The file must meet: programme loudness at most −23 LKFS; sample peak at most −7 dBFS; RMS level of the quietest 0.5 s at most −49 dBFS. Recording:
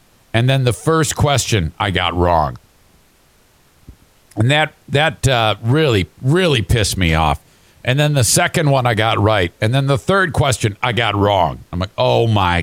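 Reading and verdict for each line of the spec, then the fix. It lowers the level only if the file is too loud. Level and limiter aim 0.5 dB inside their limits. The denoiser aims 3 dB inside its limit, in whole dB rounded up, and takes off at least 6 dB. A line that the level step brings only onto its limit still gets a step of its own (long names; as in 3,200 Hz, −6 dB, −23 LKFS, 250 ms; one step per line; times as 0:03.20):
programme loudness −15.5 LKFS: out of spec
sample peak −2.0 dBFS: out of spec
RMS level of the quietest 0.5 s −53 dBFS: in spec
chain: level −8 dB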